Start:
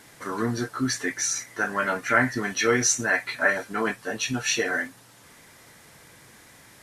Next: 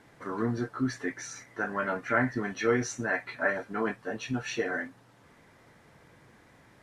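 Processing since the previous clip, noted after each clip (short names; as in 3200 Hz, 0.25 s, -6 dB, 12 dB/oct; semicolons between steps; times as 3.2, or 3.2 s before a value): LPF 1200 Hz 6 dB/oct; gain -2.5 dB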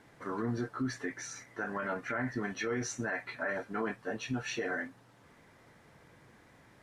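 limiter -23 dBFS, peak gain reduction 10.5 dB; gain -2 dB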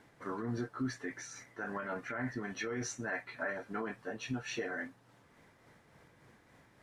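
tremolo 3.5 Hz, depth 35%; gain -1.5 dB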